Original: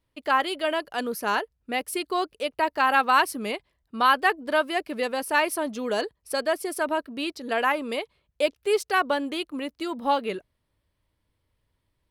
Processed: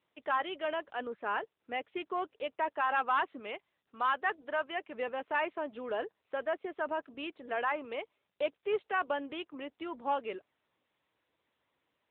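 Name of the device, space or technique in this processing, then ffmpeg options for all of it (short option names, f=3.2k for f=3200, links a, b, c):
telephone: -filter_complex "[0:a]asplit=3[a][b][c];[a]afade=t=out:st=3.38:d=0.02[d];[b]lowshelf=f=450:g=-5.5,afade=t=in:st=3.38:d=0.02,afade=t=out:st=4.93:d=0.02[e];[c]afade=t=in:st=4.93:d=0.02[f];[d][e][f]amix=inputs=3:normalize=0,highpass=330,lowpass=3.2k,asoftclip=type=tanh:threshold=-14dB,volume=-6.5dB" -ar 8000 -c:a libopencore_amrnb -b:a 10200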